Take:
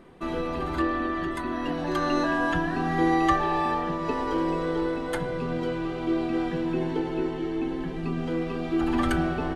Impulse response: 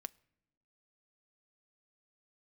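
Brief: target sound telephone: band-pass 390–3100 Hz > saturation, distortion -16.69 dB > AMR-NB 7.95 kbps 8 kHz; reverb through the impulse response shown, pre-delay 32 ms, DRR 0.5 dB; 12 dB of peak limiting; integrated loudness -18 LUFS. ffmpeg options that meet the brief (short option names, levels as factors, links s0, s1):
-filter_complex "[0:a]alimiter=limit=0.0794:level=0:latency=1,asplit=2[s0][s1];[1:a]atrim=start_sample=2205,adelay=32[s2];[s1][s2]afir=irnorm=-1:irlink=0,volume=1.58[s3];[s0][s3]amix=inputs=2:normalize=0,highpass=390,lowpass=3100,asoftclip=threshold=0.0473,volume=7.08" -ar 8000 -c:a libopencore_amrnb -b:a 7950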